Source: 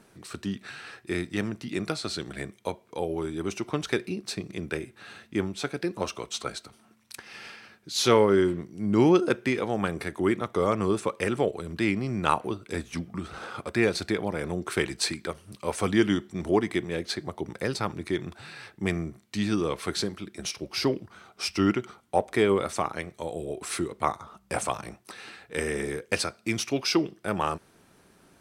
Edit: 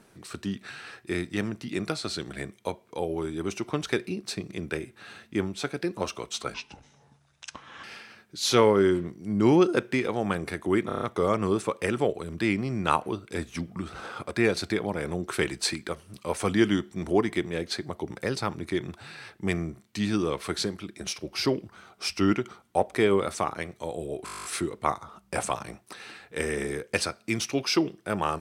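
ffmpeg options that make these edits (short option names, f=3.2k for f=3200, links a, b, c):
-filter_complex "[0:a]asplit=18[a][b][c][d][e][f][g][h][i][j][k][l][m][n][o][p][q][r];[a]atrim=end=6.544[s];[b]atrim=start=6.54:end=7.37,asetpts=PTS-STARTPTS,asetrate=28224,aresample=44100,atrim=end_sample=57192,asetpts=PTS-STARTPTS[t];[c]atrim=start=7.366:end=10.432[u];[d]atrim=start=10.398:end=10.432[v];[e]atrim=start=10.398:end=10.432[w];[f]atrim=start=10.398:end=10.432[x];[g]atrim=start=10.398:end=10.432[y];[h]atrim=start=10.398:end=23.652[z];[i]atrim=start=23.628:end=23.652[aa];[j]atrim=start=23.628:end=23.652[ab];[k]atrim=start=23.628:end=23.652[ac];[l]atrim=start=23.628:end=23.652[ad];[m]atrim=start=23.628:end=23.652[ae];[n]atrim=start=23.628:end=23.652[af];[o]atrim=start=23.628:end=23.652[ag];[p]atrim=start=23.628:end=23.652[ah];[q]atrim=start=23.628:end=23.652[ai];[r]atrim=start=23.628[aj];[s][t]acrossfade=d=0.004:c1=hsin:c2=hsin[ak];[ak][u]acrossfade=d=0.004:c1=hsin:c2=hsin[al];[al][v]acrossfade=d=0.004:c1=hsin:c2=hsin[am];[am][w]acrossfade=d=0.004:c1=hsin:c2=hsin[an];[an][x]acrossfade=d=0.004:c1=hsin:c2=hsin[ao];[ao][y]acrossfade=d=0.004:c1=hsin:c2=hsin[ap];[ap][z]acrossfade=d=0.004:c1=hsin:c2=hsin[aq];[aq][aa]acrossfade=d=0.004:c1=hsin:c2=hsin[ar];[ar][ab]acrossfade=d=0.004:c1=hsin:c2=hsin[as];[as][ac]acrossfade=d=0.004:c1=hsin:c2=hsin[at];[at][ad]acrossfade=d=0.004:c1=hsin:c2=hsin[au];[au][ae]acrossfade=d=0.004:c1=hsin:c2=hsin[av];[av][af]acrossfade=d=0.004:c1=hsin:c2=hsin[aw];[aw][ag]acrossfade=d=0.004:c1=hsin:c2=hsin[ax];[ax][ah]acrossfade=d=0.004:c1=hsin:c2=hsin[ay];[ay][ai]acrossfade=d=0.004:c1=hsin:c2=hsin[az];[az][aj]acrossfade=d=0.004:c1=hsin:c2=hsin"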